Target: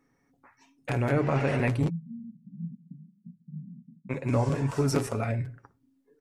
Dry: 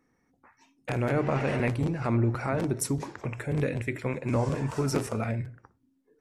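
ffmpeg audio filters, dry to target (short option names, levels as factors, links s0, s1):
-filter_complex "[0:a]asplit=3[s0][s1][s2];[s0]afade=t=out:st=1.88:d=0.02[s3];[s1]asuperpass=centerf=190:order=8:qfactor=3.2,afade=t=in:st=1.88:d=0.02,afade=t=out:st=4.09:d=0.02[s4];[s2]afade=t=in:st=4.09:d=0.02[s5];[s3][s4][s5]amix=inputs=3:normalize=0,aecho=1:1:7.2:0.37"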